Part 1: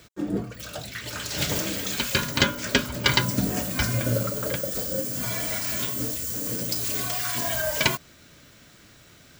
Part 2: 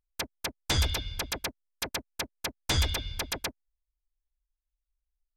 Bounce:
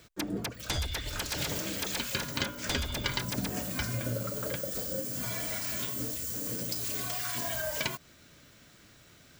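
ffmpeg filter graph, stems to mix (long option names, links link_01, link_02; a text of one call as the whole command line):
ffmpeg -i stem1.wav -i stem2.wav -filter_complex "[0:a]volume=-5dB[link_01];[1:a]volume=-1.5dB[link_02];[link_01][link_02]amix=inputs=2:normalize=0,acompressor=threshold=-30dB:ratio=3" out.wav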